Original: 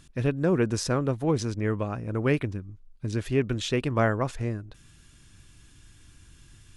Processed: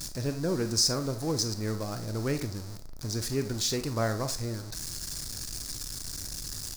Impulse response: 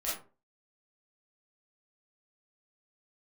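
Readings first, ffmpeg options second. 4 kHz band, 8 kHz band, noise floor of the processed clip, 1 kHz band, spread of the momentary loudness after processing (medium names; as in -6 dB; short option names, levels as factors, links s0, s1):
+7.5 dB, +10.0 dB, -40 dBFS, -5.5 dB, 10 LU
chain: -filter_complex "[0:a]aeval=exprs='val(0)+0.5*0.0299*sgn(val(0))':c=same,highshelf=f=3800:t=q:w=3:g=8,asplit=2[s0][s1];[1:a]atrim=start_sample=2205[s2];[s1][s2]afir=irnorm=-1:irlink=0,volume=0.282[s3];[s0][s3]amix=inputs=2:normalize=0,volume=0.376"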